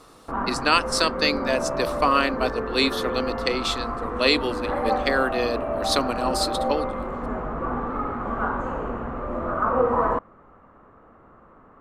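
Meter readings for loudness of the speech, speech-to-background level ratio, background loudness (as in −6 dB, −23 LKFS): −24.5 LKFS, 3.0 dB, −27.5 LKFS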